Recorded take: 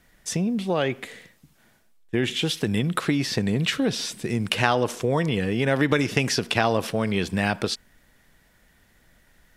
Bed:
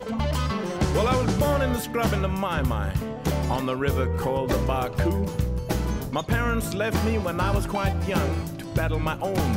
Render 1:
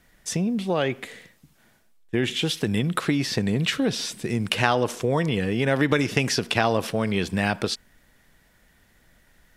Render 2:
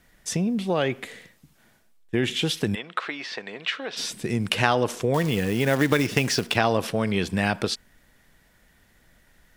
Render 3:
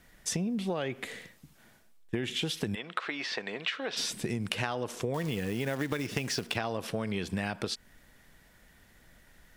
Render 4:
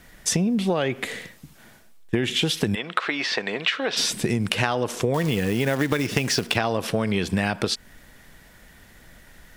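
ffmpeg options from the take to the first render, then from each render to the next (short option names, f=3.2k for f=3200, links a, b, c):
-af anull
-filter_complex "[0:a]asplit=3[a][b][c];[a]afade=t=out:st=2.74:d=0.02[d];[b]highpass=700,lowpass=3.3k,afade=t=in:st=2.74:d=0.02,afade=t=out:st=3.96:d=0.02[e];[c]afade=t=in:st=3.96:d=0.02[f];[d][e][f]amix=inputs=3:normalize=0,asettb=1/sr,asplit=3[g][h][i];[g]atrim=end=5.144[j];[h]atrim=start=5.14:end=6.56,asetpts=PTS-STARTPTS,afade=t=in:d=0.004:c=qsin,afade=t=out:st=1.416:d=0.004:c=qsin,acrusher=bits=4:mode=log:mix=0:aa=0.000001[k];[i]atrim=start=6.556[l];[j][k]acrossfade=d=0.004:c1=hsin:c2=qsin[m];[m][l]acrossfade=d=0.004:c1=qsin:c2=hsin"
-af "acompressor=threshold=-29dB:ratio=6"
-af "volume=9.5dB,alimiter=limit=-1dB:level=0:latency=1"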